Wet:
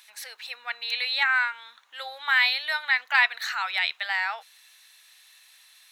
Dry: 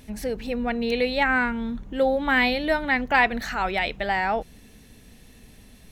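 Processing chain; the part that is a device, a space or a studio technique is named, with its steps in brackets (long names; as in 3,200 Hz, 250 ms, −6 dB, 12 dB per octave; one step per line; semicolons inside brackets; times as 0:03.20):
headphones lying on a table (high-pass filter 1,100 Hz 24 dB per octave; parametric band 3,900 Hz +8 dB 0.23 octaves)
level +1 dB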